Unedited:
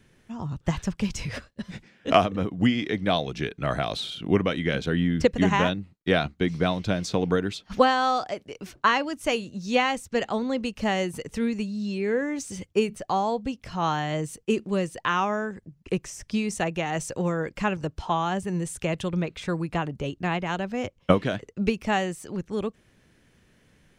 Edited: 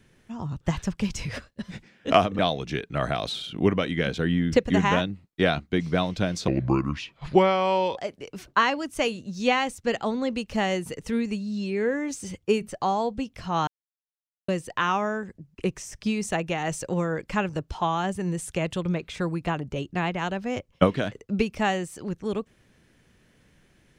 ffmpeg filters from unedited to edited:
-filter_complex "[0:a]asplit=6[a][b][c][d][e][f];[a]atrim=end=2.392[g];[b]atrim=start=3.068:end=7.164[h];[c]atrim=start=7.16:end=8.25,asetpts=PTS-STARTPTS,asetrate=32193,aresample=44100[i];[d]atrim=start=8.246:end=13.95,asetpts=PTS-STARTPTS,afade=t=out:st=5.7:d=0.004:c=hsin[j];[e]atrim=start=13.95:end=14.76,asetpts=PTS-STARTPTS,volume=0[k];[f]atrim=start=14.76,asetpts=PTS-STARTPTS,afade=t=in:d=0.004:c=hsin[l];[g][h]acrossfade=d=0.004:c1=hsin:c2=hsin[m];[m][i]acrossfade=d=0.004:c1=hsin:c2=hsin[n];[j][k][l]concat=n=3:v=0:a=1[o];[n][o]acrossfade=d=0.004:c1=hsin:c2=hsin"

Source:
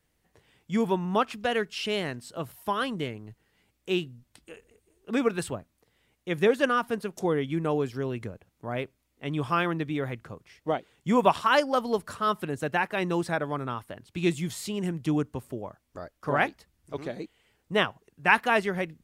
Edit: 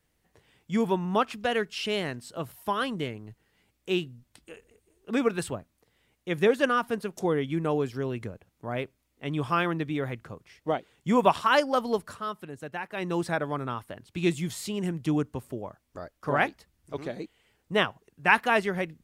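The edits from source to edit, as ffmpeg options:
-filter_complex "[0:a]asplit=3[a][b][c];[a]atrim=end=12.31,asetpts=PTS-STARTPTS,afade=t=out:st=11.93:d=0.38:silence=0.354813[d];[b]atrim=start=12.31:end=12.85,asetpts=PTS-STARTPTS,volume=-9dB[e];[c]atrim=start=12.85,asetpts=PTS-STARTPTS,afade=t=in:d=0.38:silence=0.354813[f];[d][e][f]concat=n=3:v=0:a=1"

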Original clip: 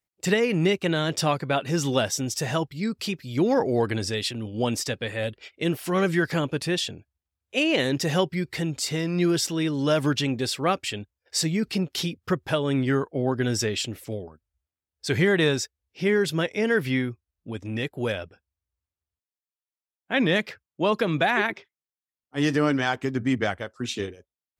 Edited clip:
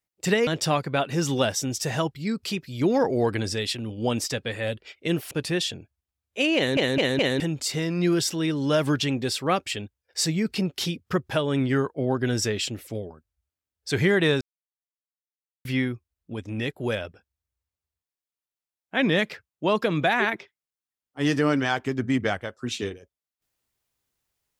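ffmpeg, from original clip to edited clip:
-filter_complex "[0:a]asplit=9[a][b][c][d][e][f][g][h][i];[a]atrim=end=0.472[j];[b]atrim=start=1.028:end=5.872[k];[c]atrim=start=6.478:end=7.942[l];[d]atrim=start=7.728:end=7.942[m];[e]atrim=start=7.728:end=7.942[n];[f]atrim=start=7.728:end=7.942[o];[g]atrim=start=8.568:end=15.58,asetpts=PTS-STARTPTS,afade=t=out:st=7.008:d=0.004:c=hsin[p];[h]atrim=start=15.58:end=16.82,asetpts=PTS-STARTPTS,volume=0[q];[i]atrim=start=16.82,asetpts=PTS-STARTPTS,afade=t=in:d=0.004:c=hsin[r];[j][k]acrossfade=d=0.004:c1=hsin:c2=hsin[s];[s][l]acrossfade=d=0.004:c1=hsin:c2=hsin[t];[t][m]acrossfade=d=0.004:c1=hsin:c2=hsin[u];[u][n]acrossfade=d=0.004:c1=hsin:c2=hsin[v];[v][o]acrossfade=d=0.004:c1=hsin:c2=hsin[w];[p][q][r]concat=n=3:v=0:a=1[x];[w][x]acrossfade=d=0.004:c1=hsin:c2=hsin"

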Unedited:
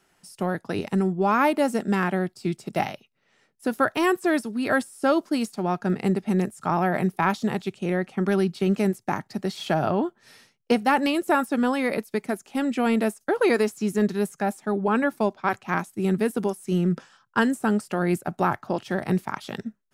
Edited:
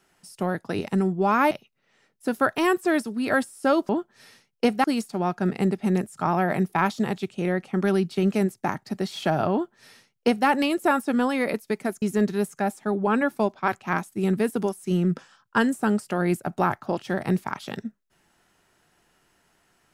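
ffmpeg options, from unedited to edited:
-filter_complex "[0:a]asplit=5[a][b][c][d][e];[a]atrim=end=1.512[f];[b]atrim=start=2.898:end=5.282[g];[c]atrim=start=9.958:end=10.912[h];[d]atrim=start=5.278:end=12.462[i];[e]atrim=start=13.828[j];[f][g]acrossfade=d=0.004:c1=hsin:c2=hsin[k];[k][h]acrossfade=d=0.004:c1=hsin:c2=hsin[l];[l][i]acrossfade=d=0.004:c1=hsin:c2=hsin[m];[m][j]acrossfade=d=0.004:c1=hsin:c2=hsin"

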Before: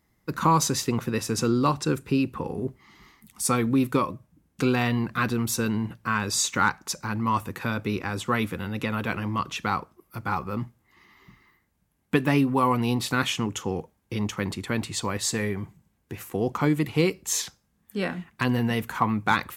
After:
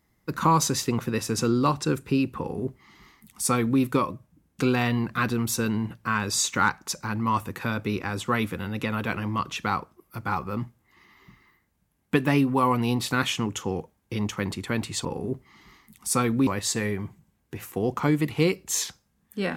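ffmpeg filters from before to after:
-filter_complex "[0:a]asplit=3[a][b][c];[a]atrim=end=15.052[d];[b]atrim=start=2.388:end=3.812[e];[c]atrim=start=15.048[f];[d][e]acrossfade=d=0.004:c1=hsin:c2=hsin[g];[g][f]acrossfade=d=0.004:c1=hsin:c2=hsin"

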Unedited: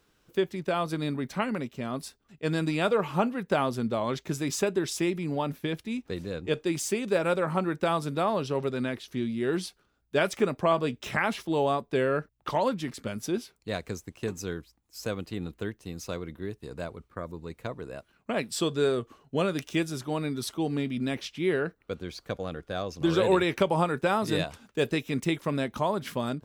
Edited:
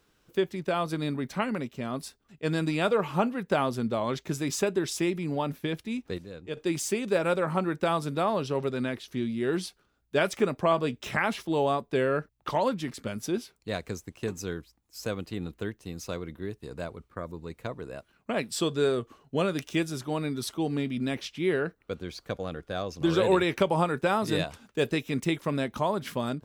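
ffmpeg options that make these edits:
-filter_complex "[0:a]asplit=3[a][b][c];[a]atrim=end=6.182[d];[b]atrim=start=6.178:end=6.572,asetpts=PTS-STARTPTS,volume=-8dB[e];[c]atrim=start=6.568[f];[d][e]acrossfade=d=0.004:c1=hsin:c2=hsin[g];[g][f]acrossfade=d=0.004:c1=hsin:c2=hsin"

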